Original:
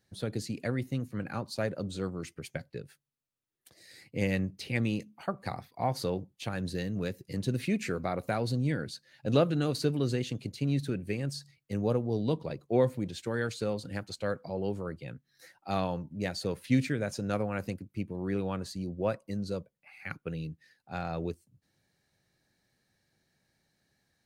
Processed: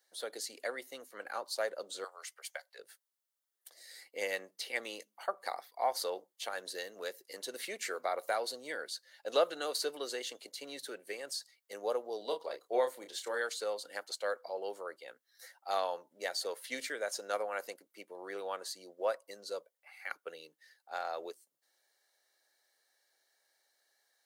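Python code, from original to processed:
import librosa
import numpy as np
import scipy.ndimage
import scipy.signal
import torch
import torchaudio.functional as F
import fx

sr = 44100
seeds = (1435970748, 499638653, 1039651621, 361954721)

y = fx.highpass(x, sr, hz=650.0, slope=24, at=(2.04, 2.79))
y = fx.doubler(y, sr, ms=30.0, db=-7, at=(12.18, 13.41))
y = scipy.signal.sosfilt(scipy.signal.butter(4, 500.0, 'highpass', fs=sr, output='sos'), y)
y = fx.high_shelf(y, sr, hz=7400.0, db=7.0)
y = fx.notch(y, sr, hz=2500.0, q=6.1)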